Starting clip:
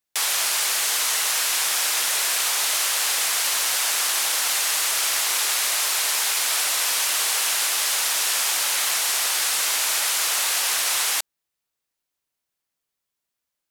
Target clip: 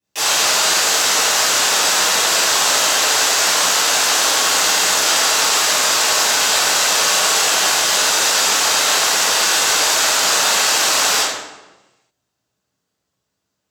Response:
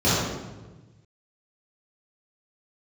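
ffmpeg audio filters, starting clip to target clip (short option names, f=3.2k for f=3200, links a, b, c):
-filter_complex "[0:a]acontrast=58[a];[1:a]atrim=start_sample=2205,asetrate=48510,aresample=44100[b];[a][b]afir=irnorm=-1:irlink=0,volume=-14dB"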